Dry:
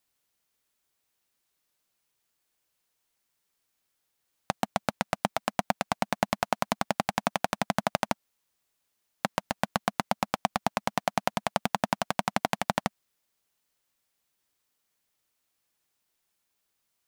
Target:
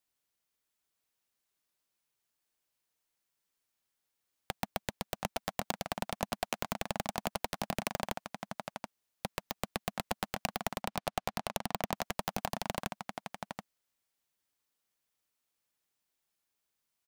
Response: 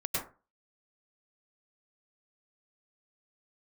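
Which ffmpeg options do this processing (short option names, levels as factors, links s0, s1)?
-filter_complex "[0:a]aecho=1:1:729:0.398,asettb=1/sr,asplit=3[s0][s1][s2];[s0]atrim=end=10.824[s3];[s1]atrim=start=10.82:end=11.95,asetpts=PTS-STARTPTS,afade=t=in:d=0.004:c=qsin,afade=t=out:st=1.126:d=0.004:c=qsin,adynamicsmooth=sensitivity=5.5:basefreq=6500[s4];[s2]atrim=start=11.946[s5];[s3][s4]acrossfade=d=0.004:c1=hsin:c2=qsin[s6];[s6][s5]acrossfade=d=0.004:c1=qsin:c2=hsin,aeval=exprs='(mod(3.55*val(0)+1,2)-1)/3.55':c=same,volume=0.473"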